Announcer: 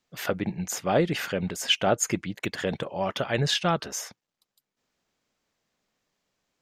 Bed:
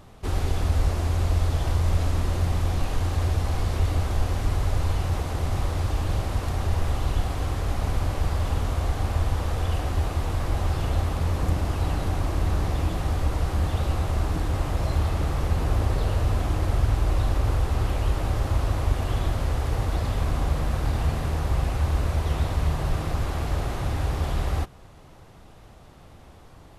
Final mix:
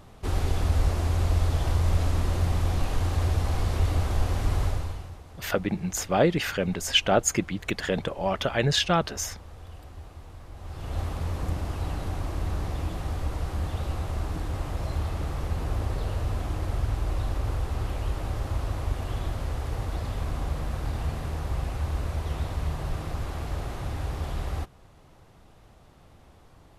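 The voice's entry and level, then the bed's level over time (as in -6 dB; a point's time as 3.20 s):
5.25 s, +1.5 dB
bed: 4.65 s -1 dB
5.19 s -18.5 dB
10.54 s -18.5 dB
11.00 s -5.5 dB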